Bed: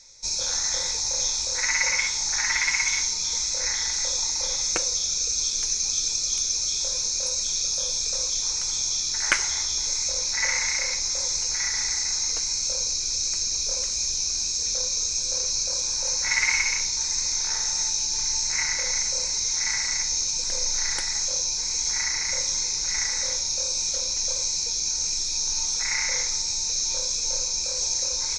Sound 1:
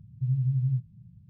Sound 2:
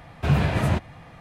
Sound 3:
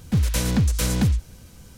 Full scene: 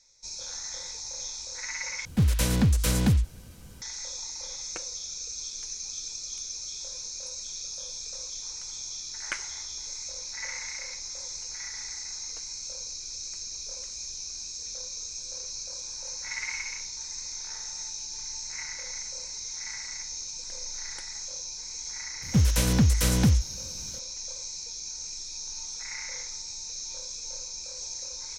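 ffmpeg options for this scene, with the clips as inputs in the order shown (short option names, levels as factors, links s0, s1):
-filter_complex "[3:a]asplit=2[s0][s1];[0:a]volume=0.266,asplit=2[s2][s3];[s2]atrim=end=2.054[s4];[s0]atrim=end=1.77,asetpts=PTS-STARTPTS,volume=0.794[s5];[s3]atrim=start=3.816[s6];[s1]atrim=end=1.77,asetpts=PTS-STARTPTS,volume=0.891,afade=t=in:d=0.004:c=hsin,afade=t=out:st=1.766:d=0.004:c=hsin,adelay=22220[s7];[s4][s5]acrossfade=d=0.004:c1=hsin:c2=hsin[s8];[s8][s6]acrossfade=d=0.004:c1=hsin:c2=hsin[s9];[s9][s7]amix=inputs=2:normalize=0"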